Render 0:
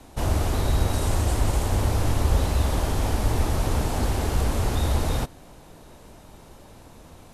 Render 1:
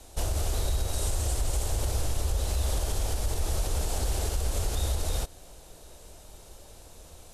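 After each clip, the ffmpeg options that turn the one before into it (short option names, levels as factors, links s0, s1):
-af "equalizer=f=125:t=o:w=1:g=-9,equalizer=f=250:t=o:w=1:g=-12,equalizer=f=1000:t=o:w=1:g=-8,equalizer=f=2000:t=o:w=1:g=-6,equalizer=f=8000:t=o:w=1:g=4,alimiter=limit=0.0891:level=0:latency=1:release=107,volume=1.26"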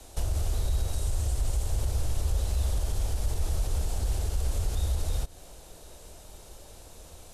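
-filter_complex "[0:a]acrossover=split=190[s0][s1];[s1]acompressor=threshold=0.01:ratio=6[s2];[s0][s2]amix=inputs=2:normalize=0,volume=1.12"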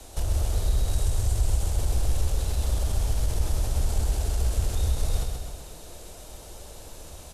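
-filter_complex "[0:a]asplit=2[s0][s1];[s1]asoftclip=type=tanh:threshold=0.0282,volume=0.501[s2];[s0][s2]amix=inputs=2:normalize=0,aecho=1:1:130|260|390|520|650|780|910:0.596|0.328|0.18|0.0991|0.0545|0.03|0.0165"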